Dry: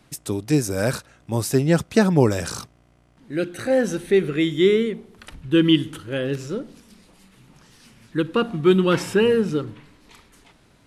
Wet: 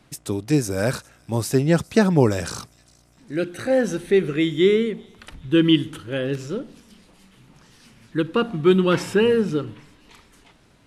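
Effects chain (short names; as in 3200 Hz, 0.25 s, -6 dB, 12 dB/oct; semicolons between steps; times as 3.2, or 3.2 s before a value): high shelf 9200 Hz -4 dB; thin delay 0.405 s, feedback 56%, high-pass 3400 Hz, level -23 dB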